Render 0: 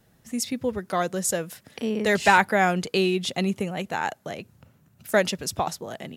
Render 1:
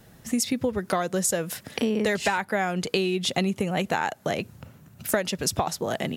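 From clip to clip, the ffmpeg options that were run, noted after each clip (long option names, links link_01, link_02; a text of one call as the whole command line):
ffmpeg -i in.wav -af "acompressor=threshold=-30dB:ratio=16,volume=9dB" out.wav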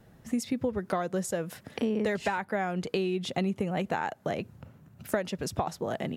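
ffmpeg -i in.wav -af "highshelf=frequency=2600:gain=-10.5,volume=-3.5dB" out.wav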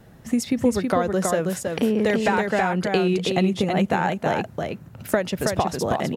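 ffmpeg -i in.wav -af "aecho=1:1:323:0.631,volume=7.5dB" out.wav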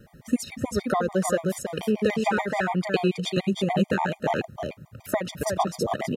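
ffmpeg -i in.wav -af "afftfilt=real='re*gt(sin(2*PI*6.9*pts/sr)*(1-2*mod(floor(b*sr/1024/620),2)),0)':imag='im*gt(sin(2*PI*6.9*pts/sr)*(1-2*mod(floor(b*sr/1024/620),2)),0)':win_size=1024:overlap=0.75" out.wav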